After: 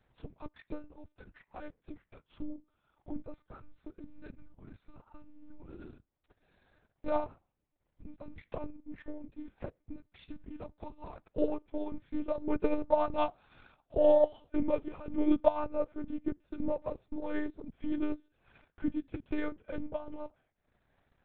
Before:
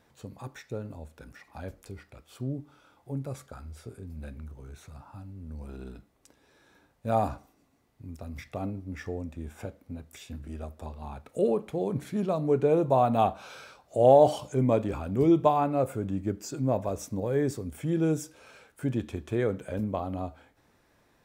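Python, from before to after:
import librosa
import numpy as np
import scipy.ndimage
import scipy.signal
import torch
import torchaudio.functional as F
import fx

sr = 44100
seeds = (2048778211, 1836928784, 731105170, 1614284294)

y = fx.lpc_monotone(x, sr, seeds[0], pitch_hz=300.0, order=8)
y = fx.transient(y, sr, attack_db=6, sustain_db=-11)
y = y * 10.0 ** (-7.0 / 20.0)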